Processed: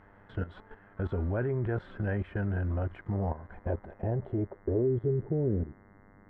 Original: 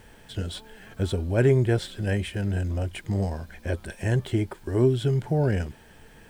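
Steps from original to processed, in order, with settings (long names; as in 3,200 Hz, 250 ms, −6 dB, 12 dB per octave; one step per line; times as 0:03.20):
output level in coarse steps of 15 dB
low-pass filter sweep 1,300 Hz → 270 Hz, 0:02.98–0:06.06
hum with harmonics 100 Hz, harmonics 21, −60 dBFS −3 dB per octave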